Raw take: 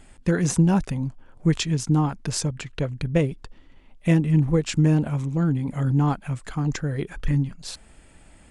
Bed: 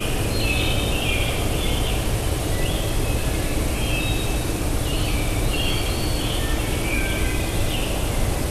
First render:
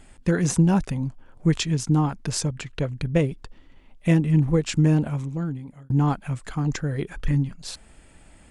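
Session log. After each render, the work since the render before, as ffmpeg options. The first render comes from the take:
ffmpeg -i in.wav -filter_complex "[0:a]asplit=2[link_01][link_02];[link_01]atrim=end=5.9,asetpts=PTS-STARTPTS,afade=type=out:start_time=4.99:duration=0.91[link_03];[link_02]atrim=start=5.9,asetpts=PTS-STARTPTS,afade=type=in:duration=0.004:curve=hsin[link_04];[link_03][link_04]concat=n=2:v=0:a=1" out.wav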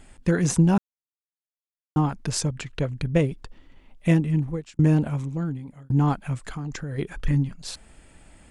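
ffmpeg -i in.wav -filter_complex "[0:a]asettb=1/sr,asplit=3[link_01][link_02][link_03];[link_01]atrim=end=6.534[link_04];[link_02]atrim=start=6.53:end=6.98,asetpts=PTS-STARTPTS,afade=type=in:duration=0.004:curve=qsin,afade=type=out:start_time=0.446:duration=0.004:curve=qsin,acompressor=threshold=-28dB:ratio=6:attack=3.2:release=140:knee=1:detection=peak[link_05];[link_03]atrim=start=6.976[link_06];[link_04][link_05]acrossfade=duration=0.004:curve1=hsin:curve2=qsin[link_07];[link_07][link_06]acrossfade=duration=0.004:curve1=qsin:curve2=hsin,asplit=4[link_08][link_09][link_10][link_11];[link_08]atrim=end=0.78,asetpts=PTS-STARTPTS,afade=type=out:start_time=0.776:duration=0.004:curve=hsin[link_12];[link_09]atrim=start=0.78:end=1.96,asetpts=PTS-STARTPTS,volume=0[link_13];[link_10]atrim=start=1.96:end=4.79,asetpts=PTS-STARTPTS,afade=type=in:duration=0.004:curve=hsin,afade=type=out:start_time=2.14:duration=0.69[link_14];[link_11]atrim=start=4.79,asetpts=PTS-STARTPTS,afade=type=in:duration=0.004:curve=hsin[link_15];[link_12][link_13][link_14][link_15]concat=n=4:v=0:a=1" out.wav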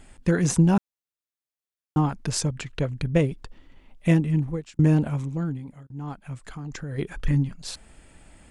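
ffmpeg -i in.wav -filter_complex "[0:a]asplit=2[link_01][link_02];[link_01]atrim=end=5.87,asetpts=PTS-STARTPTS,afade=type=out:start_time=5.866:duration=0.004:curve=hsin:silence=0.0794328[link_03];[link_02]atrim=start=5.87,asetpts=PTS-STARTPTS,afade=type=in:duration=1.18:silence=0.0794328[link_04];[link_03][link_04]concat=n=2:v=0:a=1" out.wav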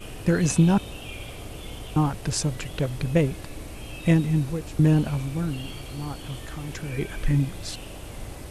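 ffmpeg -i in.wav -i bed.wav -filter_complex "[1:a]volume=-15.5dB[link_01];[0:a][link_01]amix=inputs=2:normalize=0" out.wav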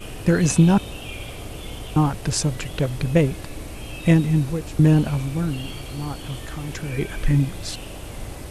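ffmpeg -i in.wav -af "volume=3.5dB" out.wav

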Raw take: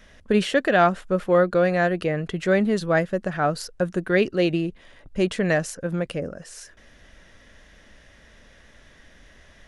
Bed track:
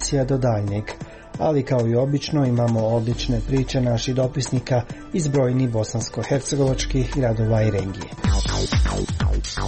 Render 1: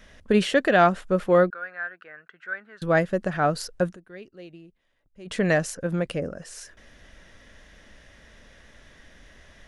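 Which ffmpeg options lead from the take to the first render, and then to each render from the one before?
ffmpeg -i in.wav -filter_complex "[0:a]asettb=1/sr,asplit=3[link_01][link_02][link_03];[link_01]atrim=end=1.504[link_04];[link_02]atrim=start=1.5:end=2.82,asetpts=PTS-STARTPTS,afade=type=in:duration=0.004:curve=qsin,afade=type=out:start_time=1.316:duration=0.004:curve=qsin,bandpass=frequency=1500:width_type=q:width=7.2[link_05];[link_03]atrim=start=2.816[link_06];[link_04][link_05]acrossfade=duration=0.004:curve1=hsin:curve2=qsin[link_07];[link_07][link_06]acrossfade=duration=0.004:curve1=qsin:curve2=hsin,asplit=3[link_08][link_09][link_10];[link_08]atrim=end=3.97,asetpts=PTS-STARTPTS,afade=type=out:start_time=3.83:duration=0.14:curve=qsin:silence=0.0749894[link_11];[link_09]atrim=start=3.97:end=5.25,asetpts=PTS-STARTPTS,volume=-22.5dB[link_12];[link_10]atrim=start=5.25,asetpts=PTS-STARTPTS,afade=type=in:duration=0.14:curve=qsin:silence=0.0749894[link_13];[link_11][link_12][link_13]concat=n=3:v=0:a=1" out.wav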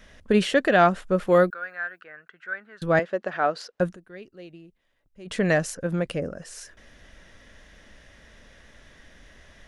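ffmpeg -i in.wav -filter_complex "[0:a]asettb=1/sr,asplit=3[link_01][link_02][link_03];[link_01]atrim=end=1.274[link_04];[link_02]atrim=start=1.27:end=2.02,asetpts=PTS-STARTPTS,afade=type=in:duration=0.004:curve=qsin,afade=type=out:start_time=0.746:duration=0.004:curve=qsin,aemphasis=mode=production:type=50kf[link_05];[link_03]atrim=start=2.016[link_06];[link_04][link_05]acrossfade=duration=0.004:curve1=hsin:curve2=qsin[link_07];[link_07][link_06]acrossfade=duration=0.004:curve1=qsin:curve2=hsin,asettb=1/sr,asplit=3[link_08][link_09][link_10];[link_08]atrim=end=2.994[link_11];[link_09]atrim=start=2.99:end=3.8,asetpts=PTS-STARTPTS,afade=type=in:duration=0.004:curve=qsin,afade=type=out:start_time=0.806:duration=0.004:curve=qsin,highpass=380,lowpass=4400[link_12];[link_10]atrim=start=3.796[link_13];[link_11][link_12]acrossfade=duration=0.004:curve1=hsin:curve2=qsin[link_14];[link_14][link_13]acrossfade=duration=0.004:curve1=qsin:curve2=hsin" out.wav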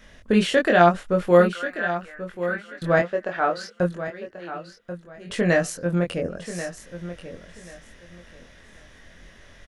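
ffmpeg -i in.wav -filter_complex "[0:a]asplit=2[link_01][link_02];[link_02]adelay=23,volume=-3dB[link_03];[link_01][link_03]amix=inputs=2:normalize=0,aecho=1:1:1086|2172|3258:0.251|0.0527|0.0111" out.wav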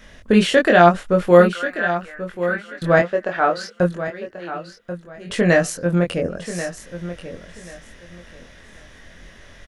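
ffmpeg -i in.wav -af "volume=4.5dB,alimiter=limit=-1dB:level=0:latency=1" out.wav

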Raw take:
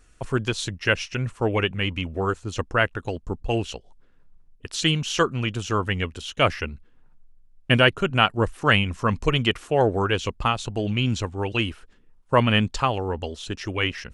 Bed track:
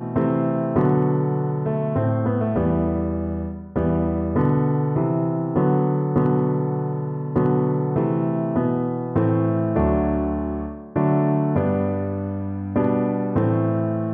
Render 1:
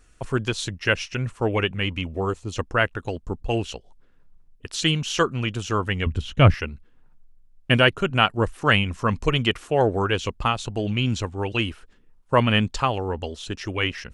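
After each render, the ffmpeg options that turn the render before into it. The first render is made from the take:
ffmpeg -i in.wav -filter_complex "[0:a]asettb=1/sr,asplit=3[link_01][link_02][link_03];[link_01]atrim=end=2.064[link_04];[link_02]atrim=start=2.06:end=2.56,asetpts=PTS-STARTPTS,afade=type=in:duration=0.004:curve=qsin,afade=type=out:start_time=0.496:duration=0.004:curve=qsin,equalizer=frequency=1500:width=4.5:gain=-11[link_05];[link_03]atrim=start=2.556[link_06];[link_04][link_05]acrossfade=duration=0.004:curve1=hsin:curve2=qsin[link_07];[link_07][link_06]acrossfade=duration=0.004:curve1=qsin:curve2=hsin,asettb=1/sr,asplit=3[link_08][link_09][link_10];[link_08]atrim=end=6.064[link_11];[link_09]atrim=start=6.06:end=6.54,asetpts=PTS-STARTPTS,afade=type=in:duration=0.004:curve=qsin,afade=type=out:start_time=0.476:duration=0.004:curve=qsin,bass=frequency=250:gain=15,treble=frequency=4000:gain=-8[link_12];[link_10]atrim=start=6.536[link_13];[link_11][link_12]acrossfade=duration=0.004:curve1=hsin:curve2=qsin[link_14];[link_14][link_13]acrossfade=duration=0.004:curve1=qsin:curve2=hsin" out.wav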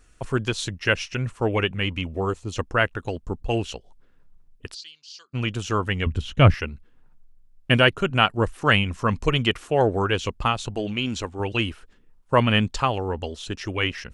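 ffmpeg -i in.wav -filter_complex "[0:a]asplit=3[link_01][link_02][link_03];[link_01]afade=type=out:start_time=4.73:duration=0.02[link_04];[link_02]bandpass=frequency=4700:width_type=q:width=11,afade=type=in:start_time=4.73:duration=0.02,afade=type=out:start_time=5.33:duration=0.02[link_05];[link_03]afade=type=in:start_time=5.33:duration=0.02[link_06];[link_04][link_05][link_06]amix=inputs=3:normalize=0,asettb=1/sr,asplit=3[link_07][link_08][link_09];[link_07]atrim=end=10.744[link_10];[link_08]atrim=start=10.74:end=11.4,asetpts=PTS-STARTPTS,afade=type=in:duration=0.004:curve=qsin,afade=type=out:start_time=0.656:duration=0.004:curve=qsin,equalizer=frequency=120:width=1.5:gain=-10[link_11];[link_09]atrim=start=11.396[link_12];[link_10][link_11]acrossfade=duration=0.004:curve1=hsin:curve2=qsin[link_13];[link_13][link_12]acrossfade=duration=0.004:curve1=qsin:curve2=hsin" out.wav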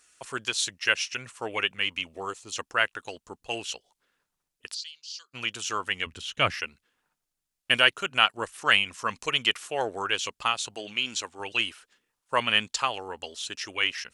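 ffmpeg -i in.wav -af "highpass=frequency=1500:poles=1,equalizer=frequency=8900:width=0.41:gain=5.5" out.wav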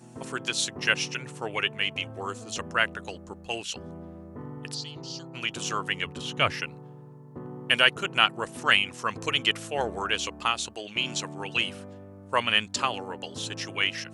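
ffmpeg -i in.wav -i bed.wav -filter_complex "[1:a]volume=-21dB[link_01];[0:a][link_01]amix=inputs=2:normalize=0" out.wav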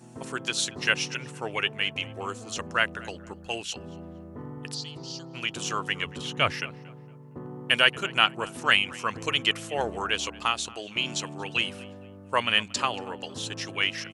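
ffmpeg -i in.wav -filter_complex "[0:a]asplit=2[link_01][link_02];[link_02]adelay=231,lowpass=frequency=3200:poles=1,volume=-20.5dB,asplit=2[link_03][link_04];[link_04]adelay=231,lowpass=frequency=3200:poles=1,volume=0.34,asplit=2[link_05][link_06];[link_06]adelay=231,lowpass=frequency=3200:poles=1,volume=0.34[link_07];[link_01][link_03][link_05][link_07]amix=inputs=4:normalize=0" out.wav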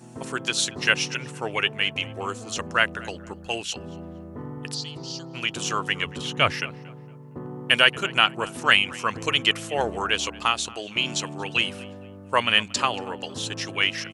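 ffmpeg -i in.wav -af "volume=3.5dB,alimiter=limit=-2dB:level=0:latency=1" out.wav

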